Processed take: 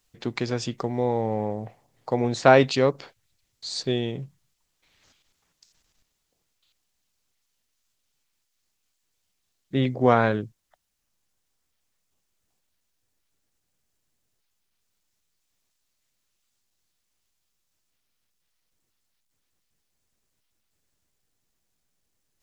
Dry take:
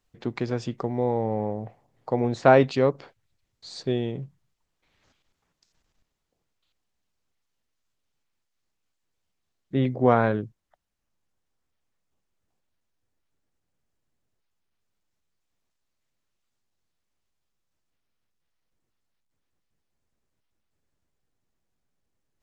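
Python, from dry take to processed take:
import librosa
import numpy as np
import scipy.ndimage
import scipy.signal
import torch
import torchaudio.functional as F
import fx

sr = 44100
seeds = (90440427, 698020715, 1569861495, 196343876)

y = fx.high_shelf(x, sr, hz=2600.0, db=11.5)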